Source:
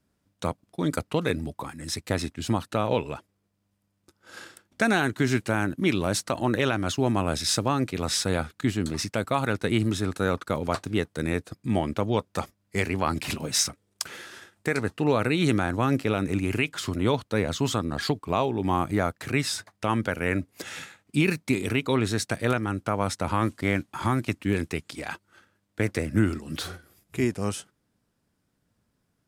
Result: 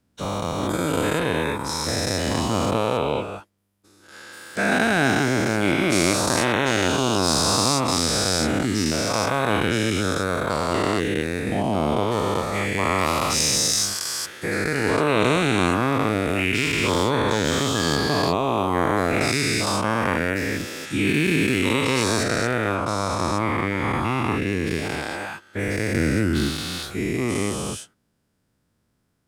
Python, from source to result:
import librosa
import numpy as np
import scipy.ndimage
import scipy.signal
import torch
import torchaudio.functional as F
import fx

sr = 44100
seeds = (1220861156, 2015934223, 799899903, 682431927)

y = fx.spec_dilate(x, sr, span_ms=480)
y = fx.high_shelf(y, sr, hz=5100.0, db=-7.5, at=(22.23, 24.67))
y = F.gain(torch.from_numpy(y), -3.5).numpy()